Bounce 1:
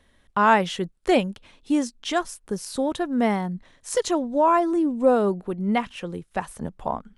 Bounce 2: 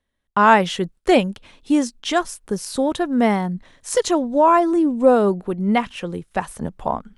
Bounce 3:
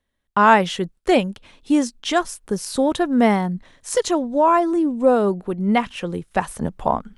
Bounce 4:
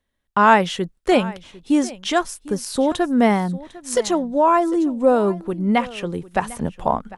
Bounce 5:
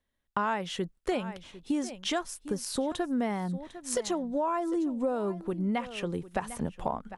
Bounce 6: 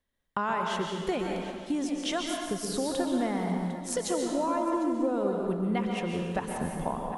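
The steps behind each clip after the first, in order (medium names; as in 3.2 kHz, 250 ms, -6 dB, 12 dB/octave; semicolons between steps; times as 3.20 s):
gate with hold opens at -48 dBFS; trim +4.5 dB
gain riding within 4 dB 2 s; trim -1 dB
delay 751 ms -19 dB
compression 6:1, threshold -21 dBFS, peak gain reduction 12.5 dB; trim -5.5 dB
plate-style reverb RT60 1.6 s, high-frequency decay 0.85×, pre-delay 110 ms, DRR 1 dB; trim -1 dB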